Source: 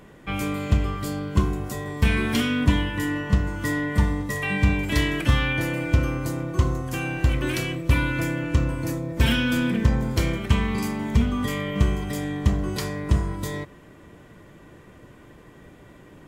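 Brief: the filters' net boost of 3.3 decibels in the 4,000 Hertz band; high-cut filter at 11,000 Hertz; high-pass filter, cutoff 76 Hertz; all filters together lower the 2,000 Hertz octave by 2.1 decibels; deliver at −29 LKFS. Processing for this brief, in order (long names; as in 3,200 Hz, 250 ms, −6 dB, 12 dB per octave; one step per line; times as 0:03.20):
high-pass filter 76 Hz
low-pass filter 11,000 Hz
parametric band 2,000 Hz −4.5 dB
parametric band 4,000 Hz +6.5 dB
level −3.5 dB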